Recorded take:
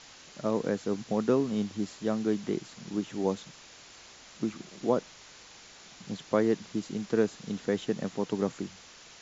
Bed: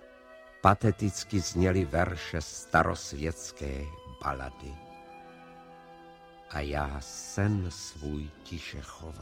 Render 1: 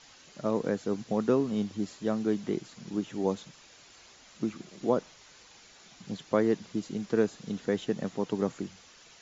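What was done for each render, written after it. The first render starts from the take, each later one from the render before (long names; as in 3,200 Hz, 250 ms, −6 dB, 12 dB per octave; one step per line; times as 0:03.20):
broadband denoise 6 dB, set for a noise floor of −52 dBFS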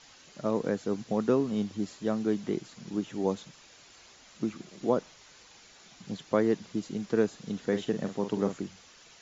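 0:07.62–0:08.56: double-tracking delay 45 ms −8.5 dB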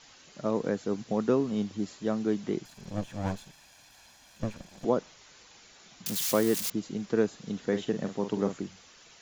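0:02.65–0:04.85: lower of the sound and its delayed copy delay 1.2 ms
0:06.06–0:06.70: spike at every zero crossing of −22.5 dBFS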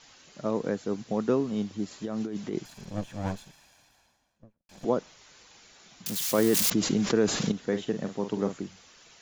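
0:01.91–0:02.85: compressor whose output falls as the input rises −32 dBFS
0:03.38–0:04.69: fade out and dull
0:06.38–0:07.52: envelope flattener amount 70%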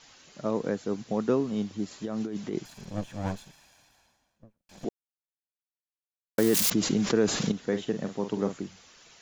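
0:04.89–0:06.38: silence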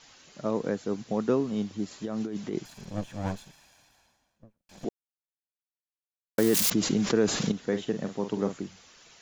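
no processing that can be heard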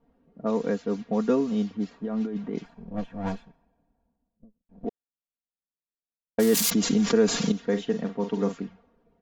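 low-pass that shuts in the quiet parts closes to 360 Hz, open at −23 dBFS
comb filter 4.3 ms, depth 73%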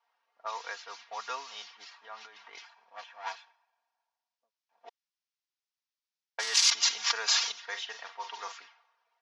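elliptic band-pass filter 880–5,700 Hz, stop band 70 dB
high-shelf EQ 2,500 Hz +9 dB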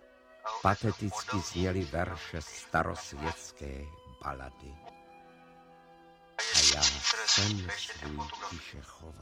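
mix in bed −5.5 dB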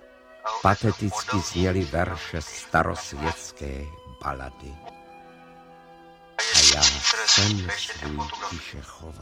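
level +8 dB
brickwall limiter −3 dBFS, peak gain reduction 1.5 dB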